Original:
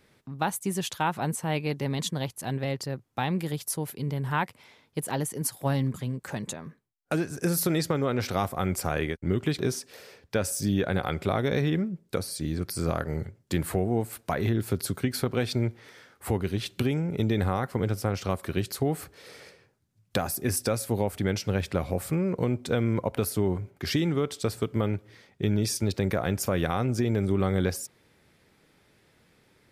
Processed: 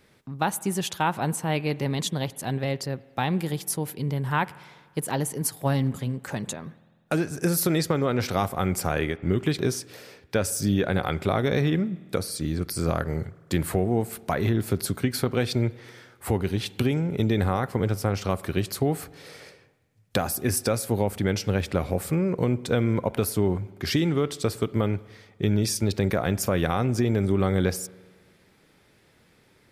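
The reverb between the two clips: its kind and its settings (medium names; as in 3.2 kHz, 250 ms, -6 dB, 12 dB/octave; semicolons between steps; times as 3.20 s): spring tank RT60 1.6 s, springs 49 ms, chirp 50 ms, DRR 19.5 dB; trim +2.5 dB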